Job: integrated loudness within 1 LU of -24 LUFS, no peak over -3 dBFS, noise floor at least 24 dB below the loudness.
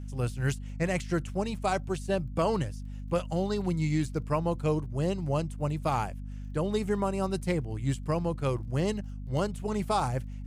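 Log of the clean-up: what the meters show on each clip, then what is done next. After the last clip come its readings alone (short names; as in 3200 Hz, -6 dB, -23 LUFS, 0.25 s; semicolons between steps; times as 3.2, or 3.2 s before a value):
ticks 26/s; hum 50 Hz; harmonics up to 250 Hz; hum level -36 dBFS; loudness -30.5 LUFS; peak -15.5 dBFS; loudness target -24.0 LUFS
-> de-click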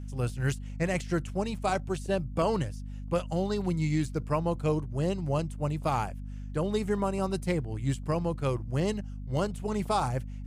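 ticks 0/s; hum 50 Hz; harmonics up to 250 Hz; hum level -36 dBFS
-> de-hum 50 Hz, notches 5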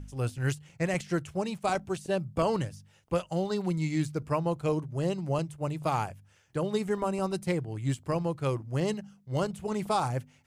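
hum none; loudness -31.5 LUFS; peak -16.0 dBFS; loudness target -24.0 LUFS
-> gain +7.5 dB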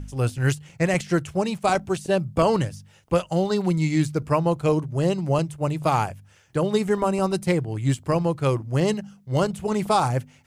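loudness -24.0 LUFS; peak -8.5 dBFS; noise floor -55 dBFS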